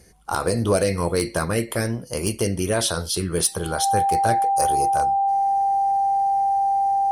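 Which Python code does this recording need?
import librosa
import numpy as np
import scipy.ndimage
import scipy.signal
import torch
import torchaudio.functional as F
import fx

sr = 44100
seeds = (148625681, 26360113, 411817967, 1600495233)

y = fx.fix_declip(x, sr, threshold_db=-10.5)
y = fx.notch(y, sr, hz=790.0, q=30.0)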